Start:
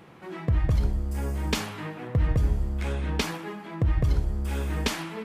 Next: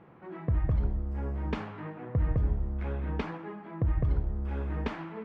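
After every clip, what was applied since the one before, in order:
low-pass filter 1,600 Hz 12 dB per octave
level −4 dB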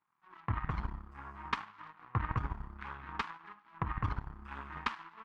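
flanger 1.1 Hz, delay 2.9 ms, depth 7.2 ms, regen +56%
power curve on the samples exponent 2
low shelf with overshoot 760 Hz −11.5 dB, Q 3
level +12.5 dB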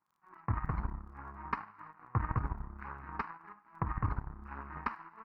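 moving average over 13 samples
surface crackle 13 per second −63 dBFS
level +1.5 dB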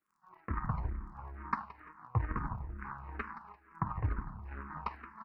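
repeating echo 172 ms, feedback 38%, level −14.5 dB
convolution reverb RT60 0.65 s, pre-delay 5 ms, DRR 16 dB
frequency shifter mixed with the dry sound −2.2 Hz
level +2 dB

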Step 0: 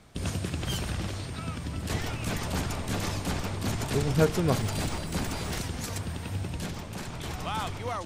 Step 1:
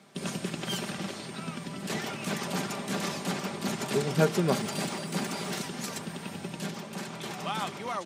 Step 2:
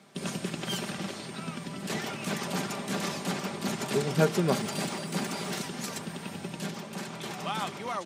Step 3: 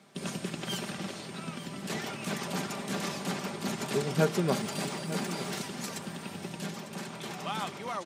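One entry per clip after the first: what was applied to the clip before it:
high-pass filter 160 Hz 24 dB per octave; high-shelf EQ 11,000 Hz −3.5 dB; comb filter 5.1 ms, depth 45%
no processing that can be heard
single-tap delay 900 ms −14 dB; level −2 dB

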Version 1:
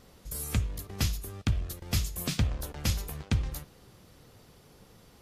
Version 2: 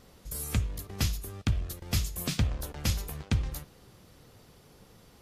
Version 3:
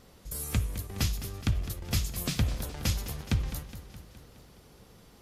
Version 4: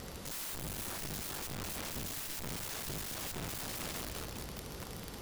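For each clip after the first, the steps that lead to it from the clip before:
no processing that can be heard
feedback echo with a swinging delay time 209 ms, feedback 61%, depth 72 cents, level −12.5 dB
tube saturation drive 38 dB, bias 0.35; wrap-around overflow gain 47.5 dB; level +11.5 dB

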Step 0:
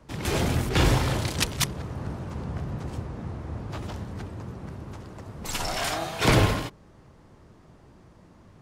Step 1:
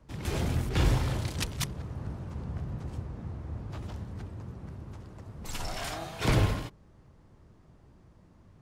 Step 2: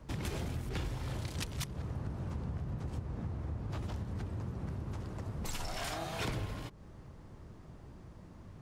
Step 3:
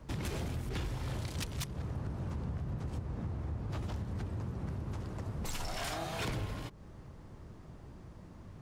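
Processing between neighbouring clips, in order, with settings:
low-shelf EQ 150 Hz +8 dB; level −8.5 dB
downward compressor 10 to 1, threshold −40 dBFS, peak gain reduction 21 dB; level +5.5 dB
gain into a clipping stage and back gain 32 dB; level +1 dB

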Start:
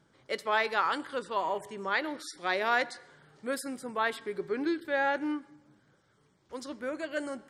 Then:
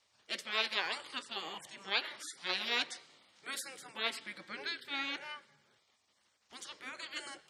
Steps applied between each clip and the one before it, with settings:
meter weighting curve D
gate on every frequency bin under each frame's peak −10 dB weak
level −4 dB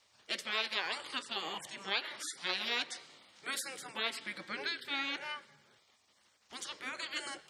downward compressor 2 to 1, threshold −39 dBFS, peak gain reduction 7 dB
level +4.5 dB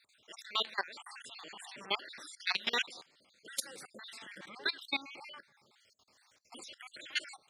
time-frequency cells dropped at random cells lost 51%
output level in coarse steps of 19 dB
level +7.5 dB

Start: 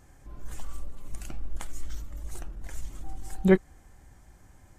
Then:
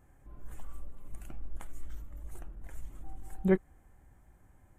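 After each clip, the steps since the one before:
parametric band 5,000 Hz −14.5 dB 1.2 octaves
level −6 dB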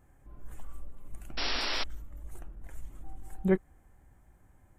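sound drawn into the spectrogram noise, 0:01.37–0:01.84, 220–5,700 Hz −33 dBFS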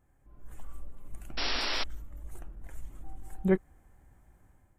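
automatic gain control gain up to 7.5 dB
level −7 dB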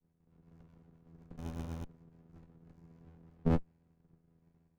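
channel vocoder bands 8, saw 82.7 Hz
rotating-speaker cabinet horn 8 Hz, later 1.2 Hz, at 0:01.74
windowed peak hold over 65 samples
level +2 dB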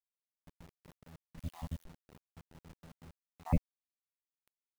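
time-frequency cells dropped at random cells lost 59%
phaser with its sweep stopped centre 1,500 Hz, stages 6
bit-depth reduction 10 bits, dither none
level +5 dB

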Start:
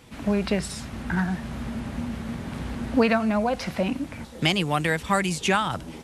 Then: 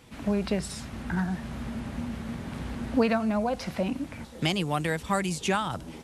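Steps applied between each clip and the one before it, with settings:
dynamic equaliser 2,100 Hz, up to −4 dB, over −37 dBFS, Q 0.84
level −3 dB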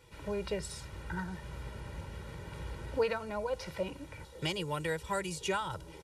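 comb filter 2.1 ms, depth 89%
level −8.5 dB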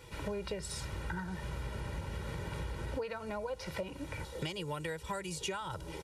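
downward compressor 10 to 1, threshold −42 dBFS, peak gain reduction 17.5 dB
level +7 dB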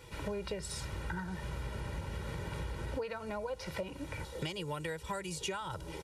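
no processing that can be heard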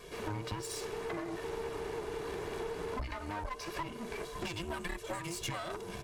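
frequency inversion band by band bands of 500 Hz
hum removal 120.9 Hz, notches 32
asymmetric clip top −46 dBFS
level +3 dB

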